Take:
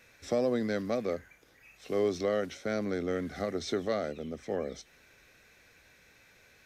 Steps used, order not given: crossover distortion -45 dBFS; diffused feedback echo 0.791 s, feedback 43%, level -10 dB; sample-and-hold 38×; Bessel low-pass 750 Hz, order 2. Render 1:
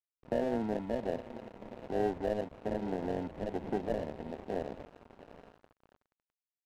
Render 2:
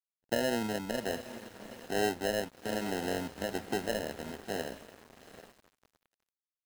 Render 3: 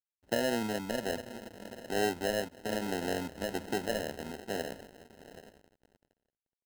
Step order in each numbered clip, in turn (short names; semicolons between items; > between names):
diffused feedback echo > sample-and-hold > Bessel low-pass > crossover distortion; Bessel low-pass > sample-and-hold > diffused feedback echo > crossover distortion; diffused feedback echo > crossover distortion > Bessel low-pass > sample-and-hold